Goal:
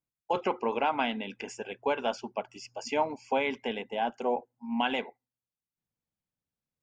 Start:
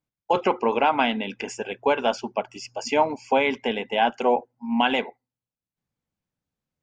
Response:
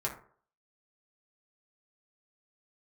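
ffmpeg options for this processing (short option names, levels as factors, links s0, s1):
-filter_complex "[0:a]asettb=1/sr,asplit=3[s0][s1][s2];[s0]atrim=end=3.824[s3];[s1]atrim=start=3.82:end=4.37,asetpts=PTS-STARTPTS,afade=t=in:d=0.004:c=qsin,afade=t=out:st=0.546:d=0.004:c=qsin,equalizer=f=2400:t=o:w=2.1:g=-6[s4];[s2]atrim=start=4.366[s5];[s3][s4]acrossfade=d=0.004:c1=hsin:c2=qsin[s6];[s6][s5]acrossfade=d=0.004:c1=qsin:c2=hsin,volume=0.422"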